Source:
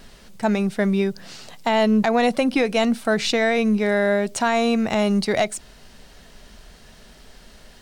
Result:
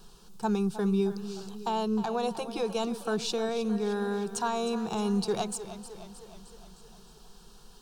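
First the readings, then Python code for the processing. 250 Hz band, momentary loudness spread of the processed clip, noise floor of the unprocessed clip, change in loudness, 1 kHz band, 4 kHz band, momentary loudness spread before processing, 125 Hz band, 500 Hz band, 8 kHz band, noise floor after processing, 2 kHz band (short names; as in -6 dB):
-9.5 dB, 13 LU, -48 dBFS, -10.0 dB, -8.5 dB, -9.5 dB, 8 LU, -7.0 dB, -9.5 dB, -6.0 dB, -54 dBFS, -17.5 dB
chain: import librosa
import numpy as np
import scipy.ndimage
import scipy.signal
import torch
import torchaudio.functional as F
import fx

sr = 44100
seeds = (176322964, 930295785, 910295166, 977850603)

y = fx.rider(x, sr, range_db=10, speed_s=0.5)
y = fx.fixed_phaser(y, sr, hz=400.0, stages=8)
y = fx.echo_warbled(y, sr, ms=309, feedback_pct=59, rate_hz=2.8, cents=68, wet_db=-13.0)
y = F.gain(torch.from_numpy(y), -6.0).numpy()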